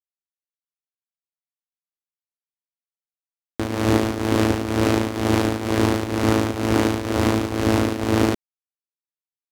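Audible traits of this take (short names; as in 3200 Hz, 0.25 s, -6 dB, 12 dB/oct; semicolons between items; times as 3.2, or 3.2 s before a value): tremolo triangle 2.1 Hz, depth 75%; a quantiser's noise floor 10-bit, dither none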